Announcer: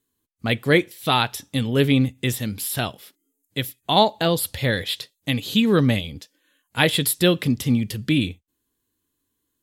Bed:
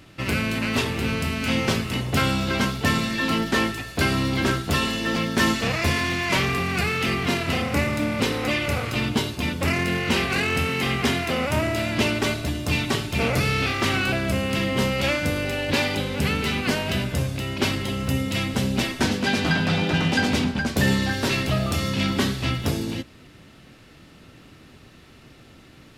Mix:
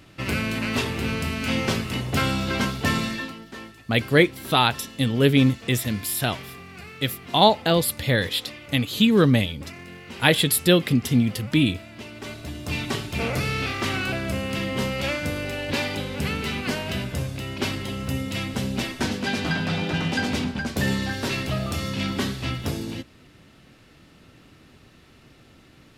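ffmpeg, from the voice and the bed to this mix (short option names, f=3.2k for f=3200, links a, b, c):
-filter_complex "[0:a]adelay=3450,volume=0.5dB[a];[1:a]volume=12.5dB,afade=t=out:st=3.08:d=0.25:silence=0.158489,afade=t=in:st=12.11:d=0.77:silence=0.199526[b];[a][b]amix=inputs=2:normalize=0"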